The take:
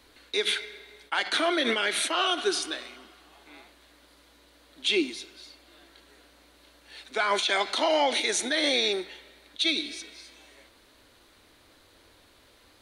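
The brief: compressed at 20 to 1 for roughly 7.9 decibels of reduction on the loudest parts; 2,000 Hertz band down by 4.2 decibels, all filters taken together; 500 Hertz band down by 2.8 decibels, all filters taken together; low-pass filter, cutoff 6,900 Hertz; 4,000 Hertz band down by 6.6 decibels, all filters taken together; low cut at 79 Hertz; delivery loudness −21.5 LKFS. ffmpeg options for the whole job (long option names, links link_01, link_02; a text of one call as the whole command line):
ffmpeg -i in.wav -af "highpass=79,lowpass=6900,equalizer=frequency=500:width_type=o:gain=-3.5,equalizer=frequency=2000:width_type=o:gain=-3.5,equalizer=frequency=4000:width_type=o:gain=-6.5,acompressor=threshold=-30dB:ratio=20,volume=14dB" out.wav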